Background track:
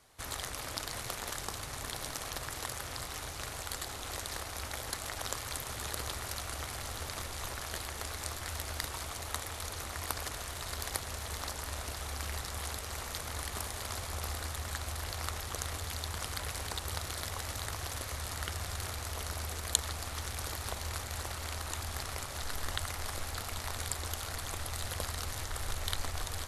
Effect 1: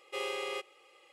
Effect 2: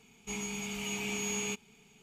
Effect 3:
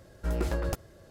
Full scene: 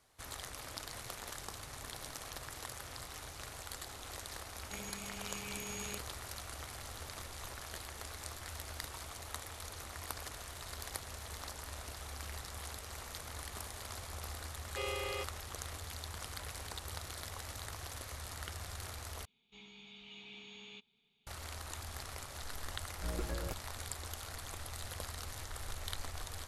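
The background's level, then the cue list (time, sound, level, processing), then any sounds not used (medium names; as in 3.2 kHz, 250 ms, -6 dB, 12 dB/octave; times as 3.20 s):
background track -6.5 dB
4.43 s: add 2 -10 dB
14.63 s: add 1 -3 dB
19.25 s: replace with 2 -7.5 dB + four-pole ladder low-pass 3.9 kHz, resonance 80%
22.78 s: add 3 -10 dB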